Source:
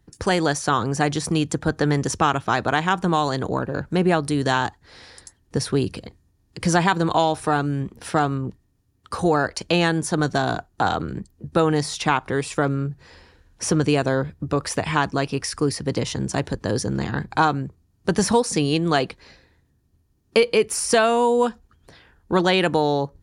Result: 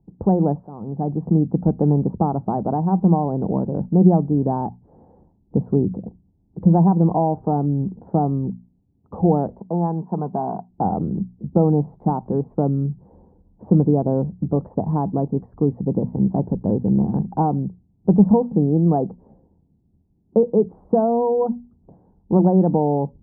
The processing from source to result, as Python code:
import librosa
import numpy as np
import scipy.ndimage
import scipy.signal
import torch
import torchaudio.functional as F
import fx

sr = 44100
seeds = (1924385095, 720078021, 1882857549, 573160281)

y = fx.cabinet(x, sr, low_hz=230.0, low_slope=12, high_hz=2400.0, hz=(300.0, 540.0, 970.0), db=(-10, -7, 7), at=(9.6, 10.7))
y = fx.dynamic_eq(y, sr, hz=610.0, q=1.2, threshold_db=-43.0, ratio=4.0, max_db=-5, at=(12.67, 13.72))
y = fx.edit(y, sr, fx.fade_in_from(start_s=0.67, length_s=0.69, floor_db=-19.0), tone=tone)
y = scipy.signal.sosfilt(scipy.signal.ellip(4, 1.0, 70, 850.0, 'lowpass', fs=sr, output='sos'), y)
y = fx.peak_eq(y, sr, hz=190.0, db=12.5, octaves=0.66)
y = fx.hum_notches(y, sr, base_hz=60, count=4)